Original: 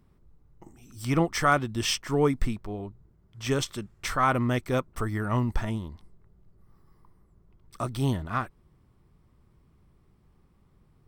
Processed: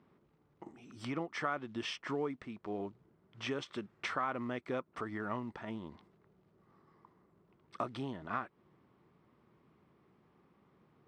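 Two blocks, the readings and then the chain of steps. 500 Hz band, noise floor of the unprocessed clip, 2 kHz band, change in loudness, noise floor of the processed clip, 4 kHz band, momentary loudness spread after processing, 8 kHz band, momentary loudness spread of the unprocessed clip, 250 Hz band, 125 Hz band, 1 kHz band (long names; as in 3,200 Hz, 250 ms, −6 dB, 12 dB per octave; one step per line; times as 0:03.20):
−10.5 dB, −63 dBFS, −10.0 dB, −12.0 dB, −72 dBFS, −11.5 dB, 12 LU, −20.5 dB, 13 LU, −11.5 dB, −19.0 dB, −11.0 dB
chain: downward compressor 8 to 1, threshold −34 dBFS, peak gain reduction 17 dB
floating-point word with a short mantissa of 4 bits
band-pass filter 230–3,000 Hz
level +2 dB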